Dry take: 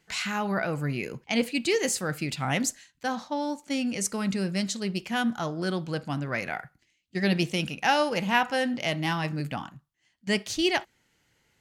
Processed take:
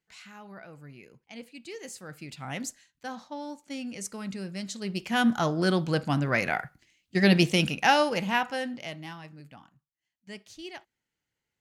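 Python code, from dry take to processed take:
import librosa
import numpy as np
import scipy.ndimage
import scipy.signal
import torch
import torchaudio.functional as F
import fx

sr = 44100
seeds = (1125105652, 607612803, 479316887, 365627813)

y = fx.gain(x, sr, db=fx.line((1.55, -18.0), (2.6, -8.0), (4.6, -8.0), (5.3, 4.5), (7.67, 4.5), (8.66, -6.0), (9.31, -17.0)))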